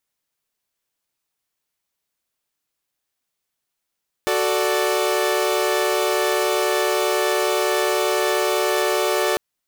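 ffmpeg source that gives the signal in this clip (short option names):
-f lavfi -i "aevalsrc='0.1*((2*mod(369.99*t,1)-1)+(2*mod(440*t,1)-1)+(2*mod(587.33*t,1)-1))':d=5.1:s=44100"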